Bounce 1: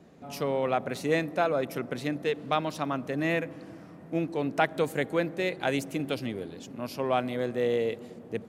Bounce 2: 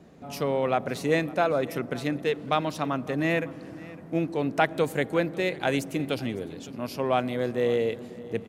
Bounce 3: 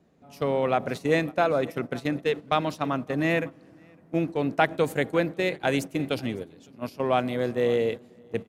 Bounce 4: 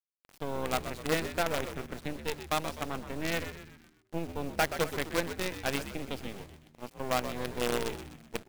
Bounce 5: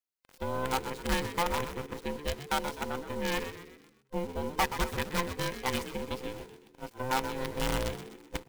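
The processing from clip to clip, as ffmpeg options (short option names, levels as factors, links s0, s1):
-af "lowshelf=f=79:g=5.5,aecho=1:1:556:0.1,volume=1.26"
-af "agate=range=0.251:threshold=0.0282:ratio=16:detection=peak,volume=1.12"
-filter_complex "[0:a]acrusher=bits=4:dc=4:mix=0:aa=0.000001,asplit=6[s0][s1][s2][s3][s4][s5];[s1]adelay=126,afreqshift=-77,volume=0.299[s6];[s2]adelay=252,afreqshift=-154,volume=0.138[s7];[s3]adelay=378,afreqshift=-231,volume=0.0631[s8];[s4]adelay=504,afreqshift=-308,volume=0.0292[s9];[s5]adelay=630,afreqshift=-385,volume=0.0133[s10];[s0][s6][s7][s8][s9][s10]amix=inputs=6:normalize=0,volume=0.447"
-af "afftfilt=real='real(if(between(b,1,1008),(2*floor((b-1)/24)+1)*24-b,b),0)':imag='imag(if(between(b,1,1008),(2*floor((b-1)/24)+1)*24-b,b),0)*if(between(b,1,1008),-1,1)':win_size=2048:overlap=0.75"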